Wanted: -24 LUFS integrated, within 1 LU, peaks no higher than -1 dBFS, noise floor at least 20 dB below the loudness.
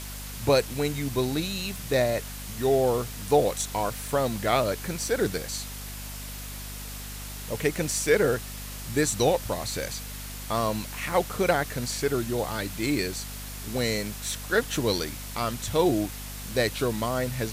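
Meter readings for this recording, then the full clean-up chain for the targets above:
hum 50 Hz; highest harmonic 250 Hz; hum level -37 dBFS; noise floor -38 dBFS; noise floor target -48 dBFS; loudness -27.5 LUFS; peak level -9.0 dBFS; loudness target -24.0 LUFS
-> de-hum 50 Hz, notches 5; noise reduction 10 dB, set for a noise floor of -38 dBFS; trim +3.5 dB

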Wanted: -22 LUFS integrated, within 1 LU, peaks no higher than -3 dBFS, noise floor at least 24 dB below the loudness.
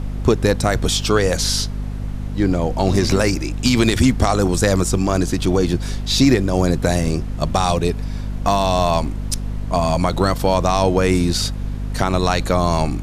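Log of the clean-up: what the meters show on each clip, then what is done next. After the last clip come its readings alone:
hum 50 Hz; highest harmonic 250 Hz; hum level -22 dBFS; noise floor -26 dBFS; noise floor target -43 dBFS; loudness -18.5 LUFS; peak level -1.5 dBFS; loudness target -22.0 LUFS
-> hum notches 50/100/150/200/250 Hz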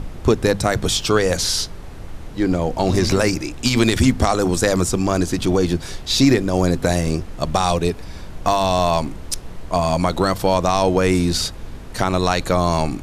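hum not found; noise floor -34 dBFS; noise floor target -43 dBFS
-> noise print and reduce 9 dB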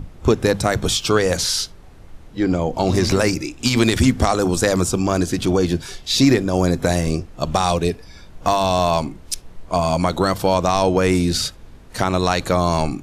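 noise floor -42 dBFS; noise floor target -43 dBFS
-> noise print and reduce 6 dB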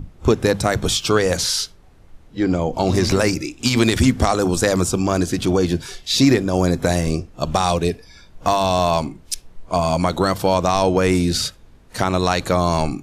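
noise floor -48 dBFS; loudness -19.0 LUFS; peak level -3.0 dBFS; loudness target -22.0 LUFS
-> trim -3 dB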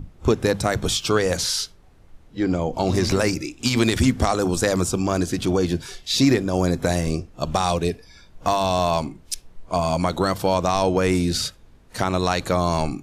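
loudness -22.0 LUFS; peak level -6.0 dBFS; noise floor -51 dBFS

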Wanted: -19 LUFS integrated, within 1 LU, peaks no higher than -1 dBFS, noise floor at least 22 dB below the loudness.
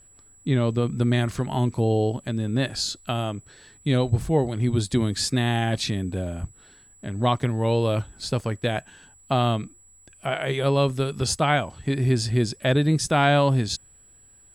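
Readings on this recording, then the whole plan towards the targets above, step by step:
steady tone 7.8 kHz; tone level -52 dBFS; loudness -24.0 LUFS; peak level -8.5 dBFS; loudness target -19.0 LUFS
-> band-stop 7.8 kHz, Q 30; trim +5 dB

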